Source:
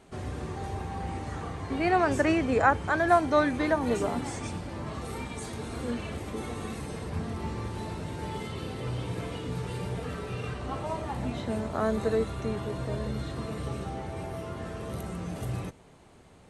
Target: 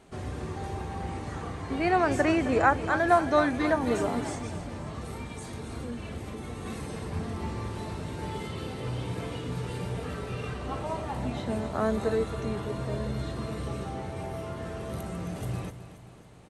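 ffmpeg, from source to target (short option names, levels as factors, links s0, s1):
-filter_complex "[0:a]asettb=1/sr,asplit=3[s0][s1][s2];[s0]atrim=end=4.344[s3];[s1]atrim=start=4.34:end=6.66,asetpts=PTS-STARTPTS,afade=t=in:d=0.004:c=qsin,afade=t=out:st=2.316:d=0.004:c=qsin,acrossover=split=190[s4][s5];[s5]acompressor=threshold=0.01:ratio=3[s6];[s4][s6]amix=inputs=2:normalize=0[s7];[s2]atrim=start=6.656[s8];[s3][s7]acrossfade=d=0.004:c1=hsin:c2=qsin[s9];[s9][s8]acrossfade=d=0.004:c1=qsin:c2=hsin,aecho=1:1:267|534|801|1068|1335:0.237|0.123|0.0641|0.0333|0.0173"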